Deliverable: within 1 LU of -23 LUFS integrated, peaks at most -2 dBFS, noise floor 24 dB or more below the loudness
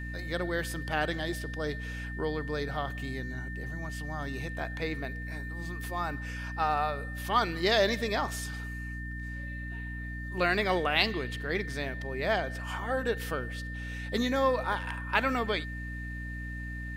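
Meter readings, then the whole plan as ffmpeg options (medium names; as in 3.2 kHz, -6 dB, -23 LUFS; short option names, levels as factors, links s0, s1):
hum 60 Hz; highest harmonic 300 Hz; hum level -36 dBFS; steady tone 1.8 kHz; tone level -41 dBFS; loudness -32.0 LUFS; peak level -9.5 dBFS; loudness target -23.0 LUFS
-> -af "bandreject=f=60:t=h:w=4,bandreject=f=120:t=h:w=4,bandreject=f=180:t=h:w=4,bandreject=f=240:t=h:w=4,bandreject=f=300:t=h:w=4"
-af "bandreject=f=1800:w=30"
-af "volume=2.82,alimiter=limit=0.794:level=0:latency=1"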